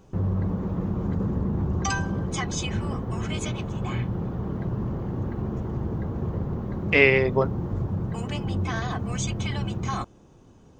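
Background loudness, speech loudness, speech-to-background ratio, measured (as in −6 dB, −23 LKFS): −29.0 LKFS, −20.0 LKFS, 9.0 dB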